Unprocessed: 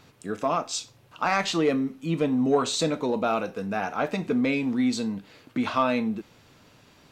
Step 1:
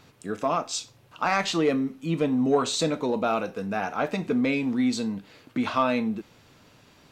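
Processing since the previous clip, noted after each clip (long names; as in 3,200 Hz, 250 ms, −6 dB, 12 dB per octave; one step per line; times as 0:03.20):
no processing that can be heard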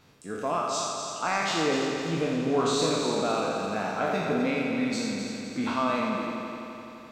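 peak hold with a decay on every bin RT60 1.05 s
echo machine with several playback heads 85 ms, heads first and third, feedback 70%, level −8 dB
level −6 dB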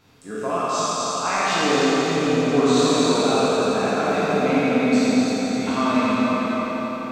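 dense smooth reverb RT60 4.4 s, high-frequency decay 0.75×, DRR −6 dB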